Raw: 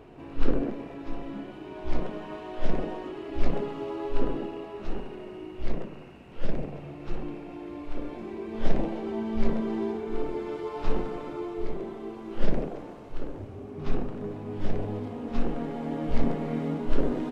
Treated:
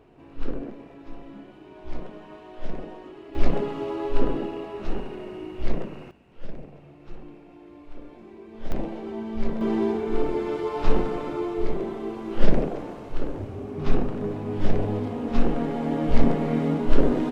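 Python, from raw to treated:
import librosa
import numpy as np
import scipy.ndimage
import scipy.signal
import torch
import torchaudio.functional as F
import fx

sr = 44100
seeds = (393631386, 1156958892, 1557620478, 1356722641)

y = fx.gain(x, sr, db=fx.steps((0.0, -5.5), (3.35, 4.0), (6.11, -8.0), (8.72, -1.5), (9.61, 6.0)))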